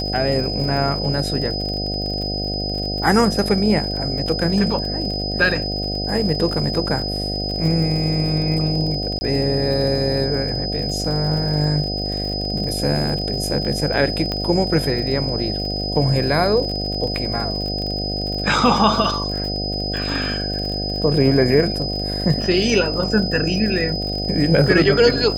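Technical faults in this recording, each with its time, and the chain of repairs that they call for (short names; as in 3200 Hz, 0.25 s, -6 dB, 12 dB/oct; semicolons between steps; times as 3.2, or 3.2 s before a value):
buzz 50 Hz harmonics 15 -26 dBFS
crackle 52/s -27 dBFS
tone 5000 Hz -25 dBFS
9.19–9.21 gap 20 ms
14.32 pop -11 dBFS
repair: de-click; de-hum 50 Hz, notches 15; notch 5000 Hz, Q 30; interpolate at 9.19, 20 ms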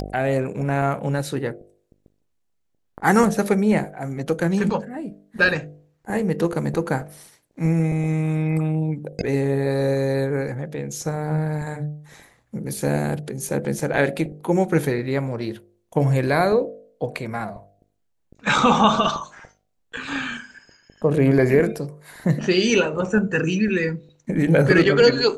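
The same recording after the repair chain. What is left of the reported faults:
none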